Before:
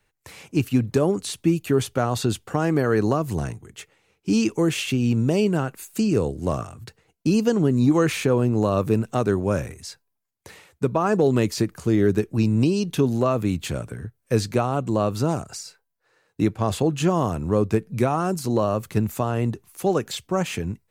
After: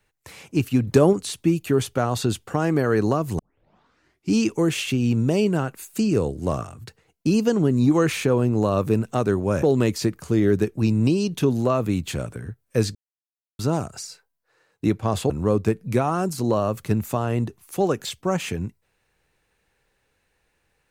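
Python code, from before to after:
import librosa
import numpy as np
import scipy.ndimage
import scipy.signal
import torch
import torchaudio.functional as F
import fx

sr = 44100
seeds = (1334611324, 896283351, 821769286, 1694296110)

y = fx.edit(x, sr, fx.clip_gain(start_s=0.87, length_s=0.26, db=4.5),
    fx.tape_start(start_s=3.39, length_s=0.93),
    fx.cut(start_s=9.63, length_s=1.56),
    fx.silence(start_s=14.51, length_s=0.64),
    fx.cut(start_s=16.86, length_s=0.5), tone=tone)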